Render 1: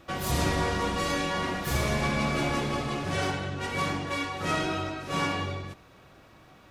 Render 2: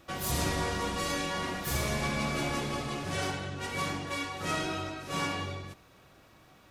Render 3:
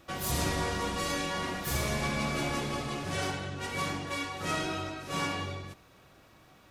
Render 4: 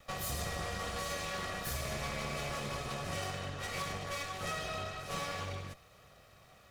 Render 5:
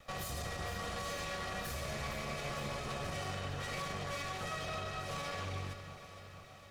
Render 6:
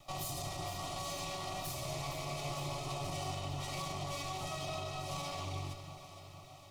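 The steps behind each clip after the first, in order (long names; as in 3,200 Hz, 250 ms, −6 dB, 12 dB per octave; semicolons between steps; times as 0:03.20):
high-shelf EQ 5,200 Hz +7.5 dB; level −4.5 dB
no processing that can be heard
lower of the sound and its delayed copy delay 1.6 ms; downward compressor 4 to 1, threshold −35 dBFS, peak gain reduction 7 dB
high-shelf EQ 8,700 Hz −5.5 dB; brickwall limiter −32.5 dBFS, peak gain reduction 7 dB; delay that swaps between a low-pass and a high-pass 232 ms, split 990 Hz, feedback 77%, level −9.5 dB; level +1 dB
phaser with its sweep stopped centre 320 Hz, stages 8; level +3.5 dB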